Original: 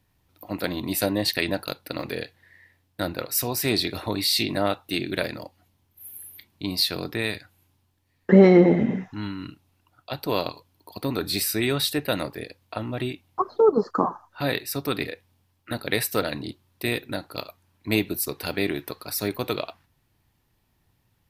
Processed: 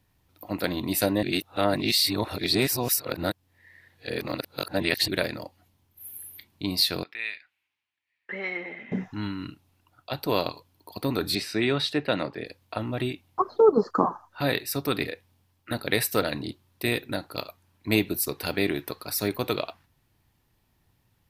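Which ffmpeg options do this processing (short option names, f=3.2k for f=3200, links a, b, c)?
-filter_complex "[0:a]asettb=1/sr,asplit=3[a][b][c];[a]atrim=end=7.034[d];[b]atrim=start=7.03:end=8.92,asetpts=PTS-STARTPTS,afade=t=in:d=0.004:c=qsin,afade=t=out:st=1.886:d=0.004:c=qsin,bandpass=f=2.3k:t=q:w=2.8[e];[c]atrim=start=8.916[f];[d][e]acrossfade=d=0.004:c1=hsin:c2=qsin[g];[g][f]acrossfade=d=0.004:c1=qsin:c2=hsin,asettb=1/sr,asplit=3[h][i][j];[h]atrim=end=11.354[k];[i]atrim=start=11.35:end=12.46,asetpts=PTS-STARTPTS,afade=t=in:d=0.004:c=qsin,afade=t=out:st=1.106:d=0.004:c=qsin,highpass=120,lowpass=4.2k[l];[j]atrim=start=12.456[m];[k][l]acrossfade=d=0.004:c1=hsin:c2=qsin[n];[n][m]acrossfade=d=0.004:c1=qsin:c2=hsin,asplit=3[o][p][q];[o]atrim=end=1.232[r];[p]atrim=start=1.228:end=5.082,asetpts=PTS-STARTPTS,areverse[s];[q]atrim=start=5.078[t];[r][s]acrossfade=d=0.004:c1=hsin:c2=hsin[u];[u][t]acrossfade=d=0.004:c1=hsin:c2=hsin"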